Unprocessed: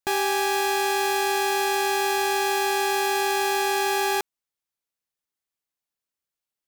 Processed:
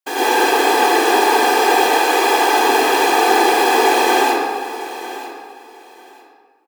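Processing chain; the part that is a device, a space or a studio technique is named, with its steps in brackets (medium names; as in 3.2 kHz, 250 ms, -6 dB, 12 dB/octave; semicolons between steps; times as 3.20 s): whispering ghost (whisper effect; high-pass 300 Hz 12 dB/octave; reverberation RT60 1.6 s, pre-delay 85 ms, DRR -9 dB); 1.98–2.56 s: high-pass 290 Hz; feedback delay 946 ms, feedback 21%, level -14.5 dB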